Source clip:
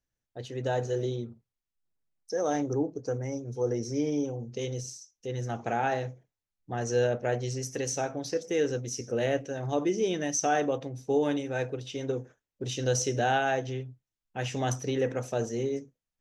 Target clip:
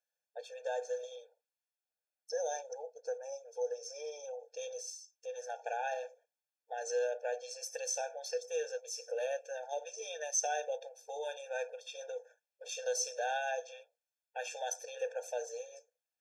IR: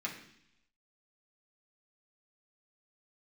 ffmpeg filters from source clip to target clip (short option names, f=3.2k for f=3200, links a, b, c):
-filter_complex "[0:a]acrossover=split=330|3000[a][b][c];[b]acompressor=threshold=-41dB:ratio=2[d];[a][d][c]amix=inputs=3:normalize=0,lowshelf=f=73:g=2.5,afftfilt=real='re*eq(mod(floor(b*sr/1024/460),2),1)':imag='im*eq(mod(floor(b*sr/1024/460),2),1)':win_size=1024:overlap=0.75"